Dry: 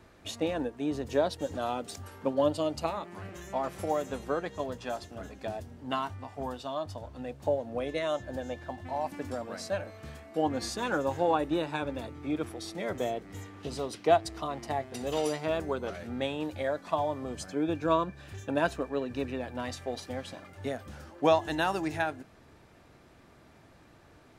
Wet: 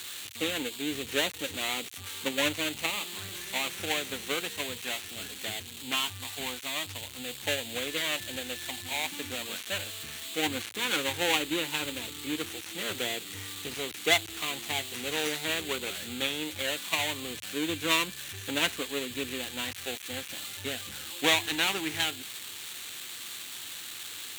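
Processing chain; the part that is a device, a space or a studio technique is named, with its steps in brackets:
budget class-D amplifier (gap after every zero crossing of 0.26 ms; spike at every zero crossing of −24.5 dBFS)
thirty-one-band graphic EQ 100 Hz +7 dB, 630 Hz −8 dB, 5,000 Hz −10 dB
meter weighting curve D
level −1.5 dB

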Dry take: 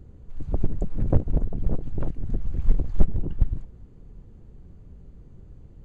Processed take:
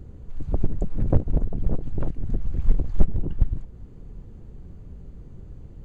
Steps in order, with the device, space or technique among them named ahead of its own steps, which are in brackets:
parallel compression (in parallel at −2.5 dB: downward compressor, threshold −35 dBFS, peak gain reduction 24.5 dB)

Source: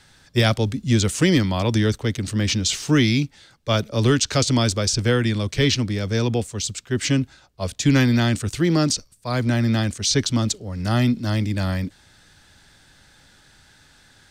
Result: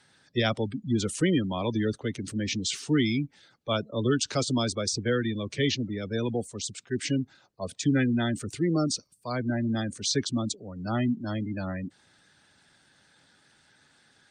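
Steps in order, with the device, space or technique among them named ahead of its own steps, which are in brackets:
noise-suppressed video call (high-pass filter 150 Hz 12 dB per octave; gate on every frequency bin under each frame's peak −20 dB strong; level −5.5 dB; Opus 32 kbit/s 48,000 Hz)

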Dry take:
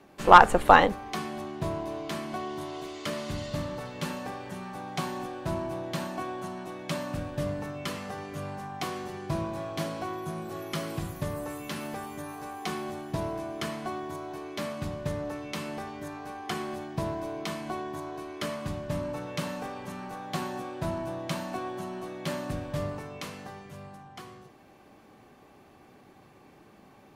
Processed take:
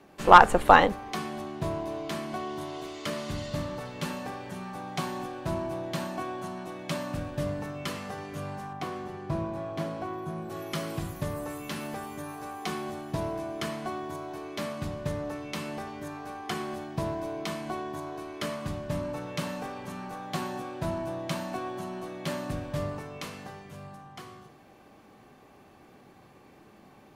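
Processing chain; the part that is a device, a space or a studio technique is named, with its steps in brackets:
0:08.73–0:10.50: high-shelf EQ 2,600 Hz −10.5 dB
compressed reverb return (on a send at −9 dB: convolution reverb RT60 0.85 s, pre-delay 22 ms + downward compressor, threshold −43 dBFS, peak gain reduction 29 dB)

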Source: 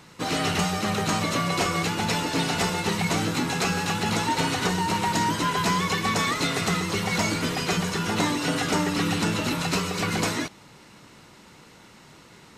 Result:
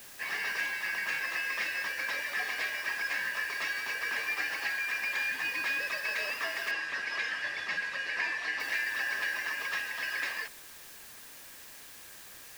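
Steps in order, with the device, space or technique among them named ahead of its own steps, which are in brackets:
split-band scrambled radio (band-splitting scrambler in four parts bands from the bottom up 3142; band-pass filter 330–3,400 Hz; white noise bed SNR 15 dB)
0:06.71–0:08.60: low-pass filter 6,000 Hz 12 dB per octave
level −7.5 dB

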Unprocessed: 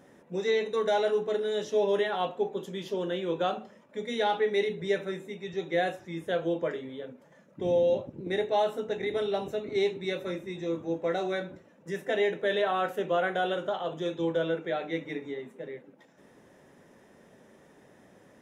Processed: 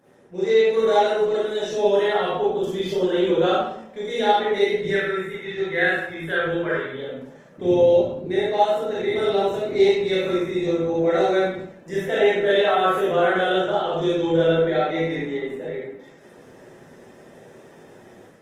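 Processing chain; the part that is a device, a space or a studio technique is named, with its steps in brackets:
0:04.90–0:06.93: graphic EQ with 15 bands 250 Hz −9 dB, 630 Hz −7 dB, 1,600 Hz +9 dB, 6,300 Hz −10 dB
far-field microphone of a smart speaker (convolution reverb RT60 0.70 s, pre-delay 29 ms, DRR −7 dB; high-pass filter 120 Hz 6 dB per octave; automatic gain control gain up to 6.5 dB; level −4 dB; Opus 20 kbit/s 48,000 Hz)

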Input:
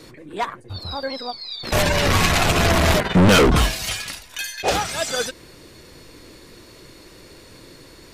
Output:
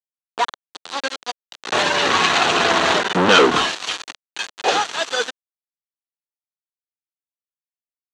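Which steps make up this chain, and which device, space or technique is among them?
hand-held game console (bit reduction 4 bits; loudspeaker in its box 400–5,900 Hz, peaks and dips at 600 Hz −7 dB, 2,200 Hz −6 dB, 5,100 Hz −8 dB)
level +5 dB

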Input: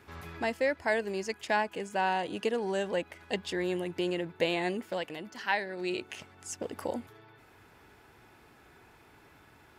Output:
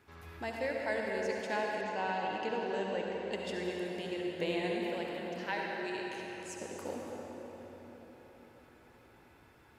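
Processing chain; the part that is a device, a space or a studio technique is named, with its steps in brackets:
cathedral (convolution reverb RT60 4.5 s, pre-delay 56 ms, DRR −2 dB)
0:01.81–0:03.33: low-pass filter 6,500 Hz 24 dB per octave
level −8 dB

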